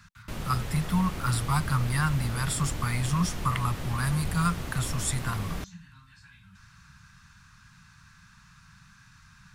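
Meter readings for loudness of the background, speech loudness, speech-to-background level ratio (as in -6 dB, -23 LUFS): -36.5 LUFS, -29.0 LUFS, 7.5 dB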